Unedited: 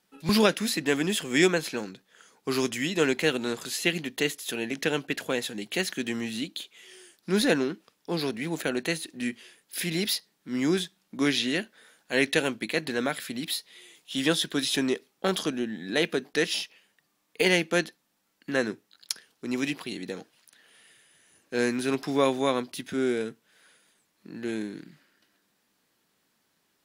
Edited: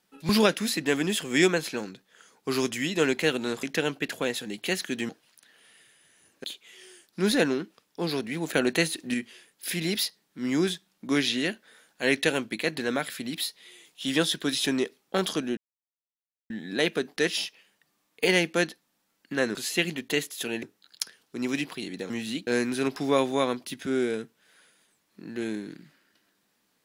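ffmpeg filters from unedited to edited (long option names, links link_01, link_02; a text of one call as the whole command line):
ffmpeg -i in.wav -filter_complex "[0:a]asplit=11[link_01][link_02][link_03][link_04][link_05][link_06][link_07][link_08][link_09][link_10][link_11];[link_01]atrim=end=3.632[link_12];[link_02]atrim=start=4.708:end=6.172[link_13];[link_03]atrim=start=20.188:end=21.542[link_14];[link_04]atrim=start=6.538:end=8.632[link_15];[link_05]atrim=start=8.628:end=9.242,asetpts=PTS-STARTPTS,volume=4.5dB[link_16];[link_06]atrim=start=9.238:end=15.67,asetpts=PTS-STARTPTS,afade=type=out:start_time=6.428:duration=0.004:curve=hsin,apad=pad_dur=0.93[link_17];[link_07]atrim=start=15.67:end=18.722,asetpts=PTS-STARTPTS,afade=type=in:duration=0.004:curve=hsin[link_18];[link_08]atrim=start=3.628:end=4.712[link_19];[link_09]atrim=start=18.718:end=20.192[link_20];[link_10]atrim=start=6.168:end=6.542[link_21];[link_11]atrim=start=21.538[link_22];[link_12][link_13]acrossfade=duration=0.004:curve1=hsin:curve2=hsin[link_23];[link_23][link_14]acrossfade=duration=0.004:curve1=hsin:curve2=hsin[link_24];[link_24][link_15]acrossfade=duration=0.004:curve1=hsin:curve2=hsin[link_25];[link_25][link_16]acrossfade=duration=0.004:curve1=hsin:curve2=hsin[link_26];[link_17][link_18]concat=n=2:v=0:a=1[link_27];[link_26][link_27]acrossfade=duration=0.004:curve1=hsin:curve2=hsin[link_28];[link_28][link_19]acrossfade=duration=0.004:curve1=hsin:curve2=hsin[link_29];[link_29][link_20]acrossfade=duration=0.004:curve1=hsin:curve2=hsin[link_30];[link_30][link_21]acrossfade=duration=0.004:curve1=hsin:curve2=hsin[link_31];[link_31][link_22]acrossfade=duration=0.004:curve1=hsin:curve2=hsin" out.wav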